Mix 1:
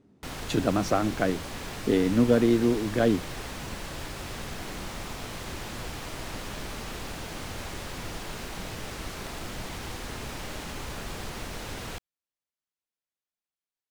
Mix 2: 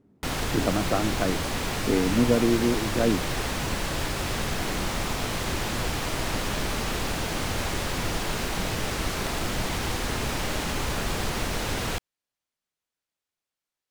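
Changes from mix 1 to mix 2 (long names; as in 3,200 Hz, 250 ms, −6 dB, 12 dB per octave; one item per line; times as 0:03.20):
speech: add high-frequency loss of the air 420 metres
background +8.5 dB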